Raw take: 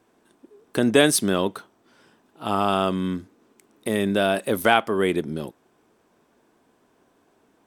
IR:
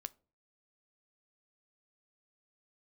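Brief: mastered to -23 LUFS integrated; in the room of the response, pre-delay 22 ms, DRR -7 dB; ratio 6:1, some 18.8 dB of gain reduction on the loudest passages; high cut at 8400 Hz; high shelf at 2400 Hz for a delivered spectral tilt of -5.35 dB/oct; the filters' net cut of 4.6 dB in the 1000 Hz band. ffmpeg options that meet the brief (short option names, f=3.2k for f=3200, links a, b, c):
-filter_complex "[0:a]lowpass=8.4k,equalizer=f=1k:t=o:g=-5.5,highshelf=f=2.4k:g=-7.5,acompressor=threshold=-34dB:ratio=6,asplit=2[a][b];[1:a]atrim=start_sample=2205,adelay=22[c];[b][c]afir=irnorm=-1:irlink=0,volume=11dB[d];[a][d]amix=inputs=2:normalize=0,volume=8dB"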